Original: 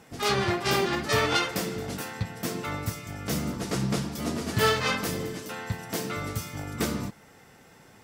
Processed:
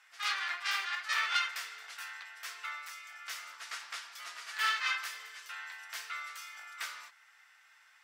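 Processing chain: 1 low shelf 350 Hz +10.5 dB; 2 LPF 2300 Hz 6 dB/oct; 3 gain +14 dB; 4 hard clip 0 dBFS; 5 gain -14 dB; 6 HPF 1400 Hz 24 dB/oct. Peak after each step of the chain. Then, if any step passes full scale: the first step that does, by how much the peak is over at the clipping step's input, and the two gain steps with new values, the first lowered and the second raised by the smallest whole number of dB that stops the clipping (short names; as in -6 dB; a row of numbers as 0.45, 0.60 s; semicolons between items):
-6.0, -6.5, +7.5, 0.0, -14.0, -17.0 dBFS; step 3, 7.5 dB; step 3 +6 dB, step 5 -6 dB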